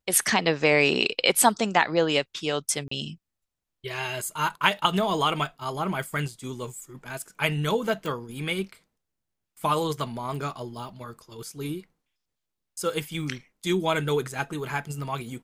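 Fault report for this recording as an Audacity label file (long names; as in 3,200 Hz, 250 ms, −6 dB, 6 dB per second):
2.880000	2.910000	drop-out 34 ms
8.060000	8.060000	click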